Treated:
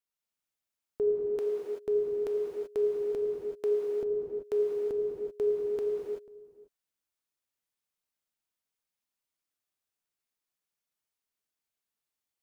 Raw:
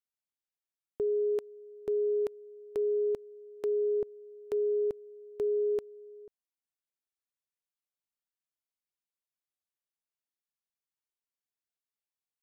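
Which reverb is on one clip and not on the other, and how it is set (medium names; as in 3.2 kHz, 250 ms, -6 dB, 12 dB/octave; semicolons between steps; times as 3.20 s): gated-style reverb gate 410 ms flat, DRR -3 dB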